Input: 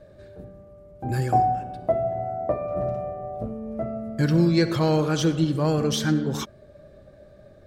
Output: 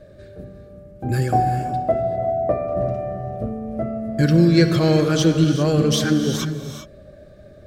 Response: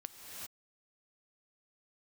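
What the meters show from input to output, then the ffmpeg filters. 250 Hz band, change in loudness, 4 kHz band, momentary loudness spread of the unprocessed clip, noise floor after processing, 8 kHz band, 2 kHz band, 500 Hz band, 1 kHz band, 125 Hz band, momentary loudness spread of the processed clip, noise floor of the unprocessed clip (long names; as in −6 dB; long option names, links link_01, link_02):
+5.5 dB, +4.5 dB, +5.5 dB, 12 LU, −45 dBFS, +5.5 dB, +5.0 dB, +4.5 dB, +2.0 dB, +5.5 dB, 12 LU, −51 dBFS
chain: -filter_complex "[0:a]equalizer=frequency=910:width=2.9:gain=-9.5,asplit=2[link_01][link_02];[1:a]atrim=start_sample=2205[link_03];[link_02][link_03]afir=irnorm=-1:irlink=0,volume=3dB[link_04];[link_01][link_04]amix=inputs=2:normalize=0"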